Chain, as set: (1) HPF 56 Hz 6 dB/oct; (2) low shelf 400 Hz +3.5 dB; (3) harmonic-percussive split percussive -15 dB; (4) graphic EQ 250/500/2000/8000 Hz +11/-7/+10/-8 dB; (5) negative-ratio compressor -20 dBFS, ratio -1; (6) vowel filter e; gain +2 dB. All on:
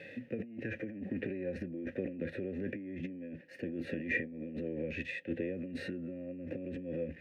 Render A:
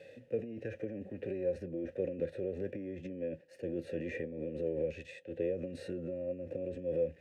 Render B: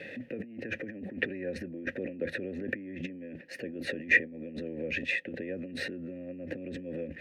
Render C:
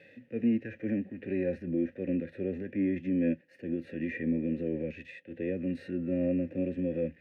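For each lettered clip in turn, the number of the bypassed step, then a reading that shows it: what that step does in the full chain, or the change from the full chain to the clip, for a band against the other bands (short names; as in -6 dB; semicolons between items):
4, crest factor change -2.0 dB; 3, 4 kHz band +9.5 dB; 5, crest factor change -5.0 dB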